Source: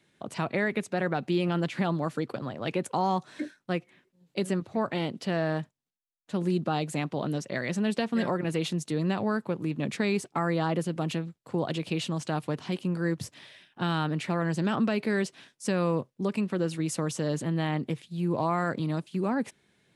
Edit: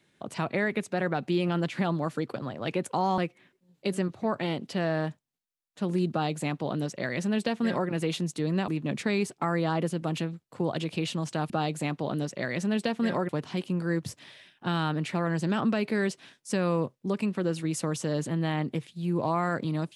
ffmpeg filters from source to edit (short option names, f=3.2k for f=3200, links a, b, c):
-filter_complex "[0:a]asplit=5[a][b][c][d][e];[a]atrim=end=3.182[f];[b]atrim=start=3.698:end=9.202[g];[c]atrim=start=9.618:end=12.442[h];[d]atrim=start=6.628:end=8.422[i];[e]atrim=start=12.438[j];[f][g]acrossfade=d=0.004:c1=hsin:c2=hsin[k];[k][h]acrossfade=d=0.004:c1=hsin:c2=hsin[l];[l][i]acrossfade=d=0.004:c1=hsin:c2=hsin[m];[m][j]acrossfade=d=0.004:c1=hsin:c2=hsin"